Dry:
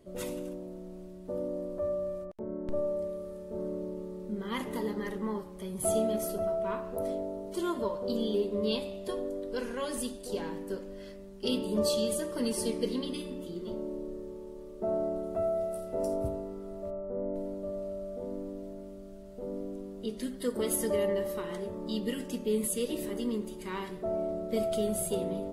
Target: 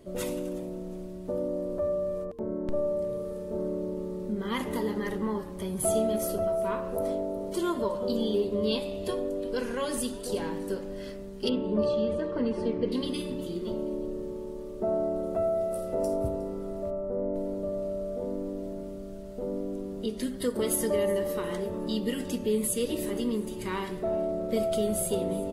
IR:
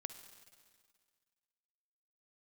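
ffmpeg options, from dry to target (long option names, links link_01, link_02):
-filter_complex "[0:a]asettb=1/sr,asplit=3[link_01][link_02][link_03];[link_01]atrim=end=11.494[link_04];[link_02]atrim=start=11.49:end=12.92,asetpts=PTS-STARTPTS,afade=type=in:duration=0.004:curve=qsin,afade=type=out:start_time=1.426:duration=0.004:curve=qsin,lowpass=1900[link_05];[link_03]atrim=start=12.916[link_06];[link_04][link_05]acrossfade=duration=0.004:curve1=hsin:curve2=qsin[link_07];[link_07][link_06]acrossfade=duration=0.004:curve1=qsin:curve2=hsin,asplit=2[link_08][link_09];[link_09]acompressor=threshold=-37dB:ratio=6,volume=0.5dB[link_10];[link_08][link_10]amix=inputs=2:normalize=0,asplit=4[link_11][link_12][link_13][link_14];[link_12]adelay=361,afreqshift=-130,volume=-19dB[link_15];[link_13]adelay=722,afreqshift=-260,volume=-28.1dB[link_16];[link_14]adelay=1083,afreqshift=-390,volume=-37.2dB[link_17];[link_11][link_15][link_16][link_17]amix=inputs=4:normalize=0"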